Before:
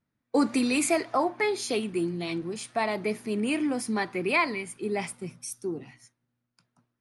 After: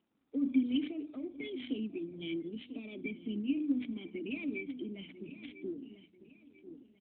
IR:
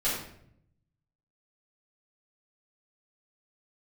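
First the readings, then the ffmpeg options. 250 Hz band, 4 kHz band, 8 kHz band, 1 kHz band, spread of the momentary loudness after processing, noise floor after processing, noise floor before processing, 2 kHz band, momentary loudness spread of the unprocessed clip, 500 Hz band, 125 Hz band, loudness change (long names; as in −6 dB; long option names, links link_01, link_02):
−5.5 dB, −11.0 dB, below −40 dB, below −35 dB, 16 LU, −69 dBFS, −82 dBFS, −16.0 dB, 10 LU, −15.5 dB, −11.0 dB, −9.5 dB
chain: -filter_complex "[0:a]afftfilt=real='re*pow(10,15/40*sin(2*PI*(1.9*log(max(b,1)*sr/1024/100)/log(2)-(-1.2)*(pts-256)/sr)))':imag='im*pow(10,15/40*sin(2*PI*(1.9*log(max(b,1)*sr/1024/100)/log(2)-(-1.2)*(pts-256)/sr)))':win_size=1024:overlap=0.75,alimiter=limit=-19dB:level=0:latency=1:release=31,asuperstop=centerf=1800:order=4:qfactor=1.2,lowshelf=frequency=97:gain=-8,asplit=2[link_01][link_02];[link_02]aecho=0:1:993|1986|2979:0.119|0.0368|0.0114[link_03];[link_01][link_03]amix=inputs=2:normalize=0,acompressor=threshold=-39dB:ratio=2.5,aemphasis=mode=production:type=75kf,bandreject=frequency=60:width_type=h:width=6,bandreject=frequency=120:width_type=h:width=6,bandreject=frequency=180:width_type=h:width=6,bandreject=frequency=240:width_type=h:width=6,bandreject=frequency=300:width_type=h:width=6,adynamicsmooth=sensitivity=3:basefreq=2200,asplit=3[link_04][link_05][link_06];[link_04]bandpass=frequency=270:width_type=q:width=8,volume=0dB[link_07];[link_05]bandpass=frequency=2290:width_type=q:width=8,volume=-6dB[link_08];[link_06]bandpass=frequency=3010:width_type=q:width=8,volume=-9dB[link_09];[link_07][link_08][link_09]amix=inputs=3:normalize=0,volume=13dB" -ar 8000 -c:a libopencore_amrnb -b:a 12200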